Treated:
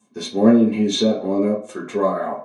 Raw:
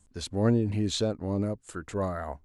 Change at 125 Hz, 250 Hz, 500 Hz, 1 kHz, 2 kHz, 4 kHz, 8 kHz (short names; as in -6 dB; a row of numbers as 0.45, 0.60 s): -1.5, +12.0, +11.0, +11.0, +8.0, +9.5, +5.5 dB